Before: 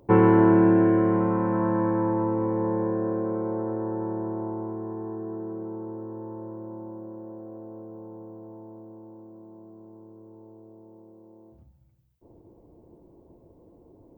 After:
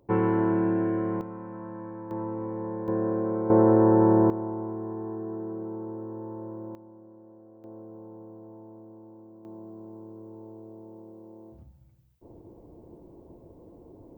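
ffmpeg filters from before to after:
-af "asetnsamples=n=441:p=0,asendcmd='1.21 volume volume -15dB;2.11 volume volume -7.5dB;2.88 volume volume 0dB;3.5 volume volume 11dB;4.3 volume volume -0.5dB;6.75 volume volume -11dB;7.64 volume volume -3dB;9.45 volume volume 4dB',volume=0.447"

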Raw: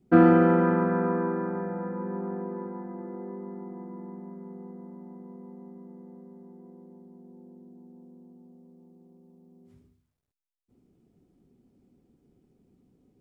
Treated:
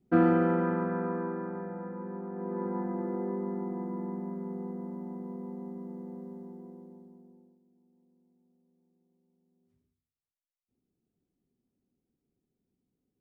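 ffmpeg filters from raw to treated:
-af "volume=1.78,afade=t=in:st=2.33:d=0.45:silence=0.281838,afade=t=out:st=6.3:d=0.94:silence=0.298538,afade=t=out:st=7.24:d=0.35:silence=0.237137"

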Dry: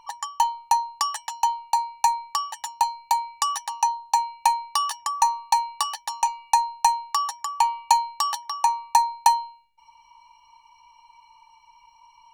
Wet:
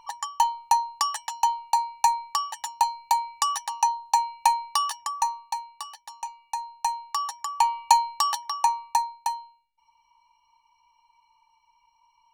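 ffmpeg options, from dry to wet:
-af "volume=3.98,afade=t=out:st=4.74:d=0.87:silence=0.266073,afade=t=in:st=6.56:d=1.32:silence=0.237137,afade=t=out:st=8.48:d=0.72:silence=0.281838"

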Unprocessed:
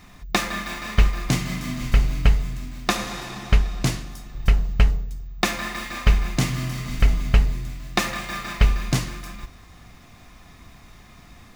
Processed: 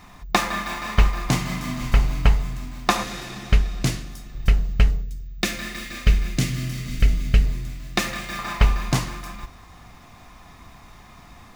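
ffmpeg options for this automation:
-af "asetnsamples=n=441:p=0,asendcmd='3.03 equalizer g -4.5;5.02 equalizer g -14;7.44 equalizer g -4.5;8.39 equalizer g 7',equalizer=f=930:t=o:w=0.87:g=7"

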